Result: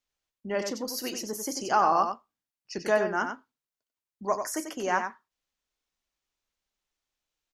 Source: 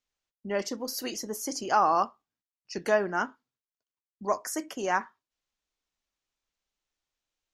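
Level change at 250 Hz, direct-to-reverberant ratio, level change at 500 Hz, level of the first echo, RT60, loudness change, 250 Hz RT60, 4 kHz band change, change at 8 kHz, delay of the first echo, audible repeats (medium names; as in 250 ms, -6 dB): +1.0 dB, no reverb, +0.5 dB, -7.0 dB, no reverb, +0.5 dB, no reverb, +1.0 dB, +1.0 dB, 93 ms, 1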